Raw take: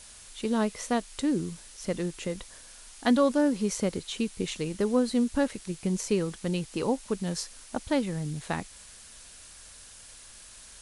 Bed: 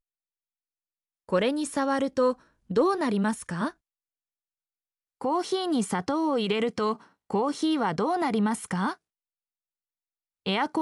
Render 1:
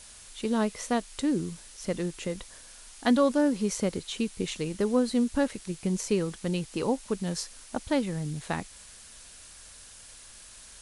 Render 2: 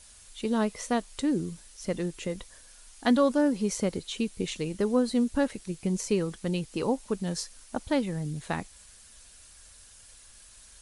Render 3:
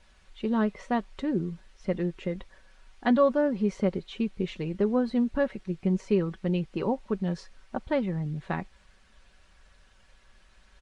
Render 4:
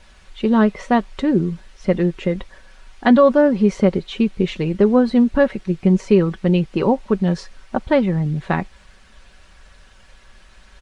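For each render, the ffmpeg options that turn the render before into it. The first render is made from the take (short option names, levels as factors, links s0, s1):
-af anull
-af "afftdn=nr=6:nf=-50"
-af "lowpass=2400,aecho=1:1:5.3:0.41"
-af "volume=3.55,alimiter=limit=0.708:level=0:latency=1"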